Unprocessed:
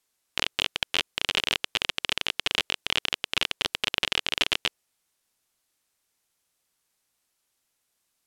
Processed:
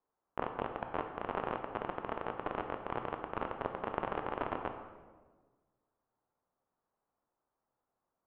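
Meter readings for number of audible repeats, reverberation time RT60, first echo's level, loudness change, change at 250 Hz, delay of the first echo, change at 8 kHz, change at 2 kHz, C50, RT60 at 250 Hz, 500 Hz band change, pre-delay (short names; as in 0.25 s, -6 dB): none, 1.4 s, none, -12.5 dB, 0.0 dB, none, under -40 dB, -16.5 dB, 7.0 dB, 1.7 s, +1.5 dB, 13 ms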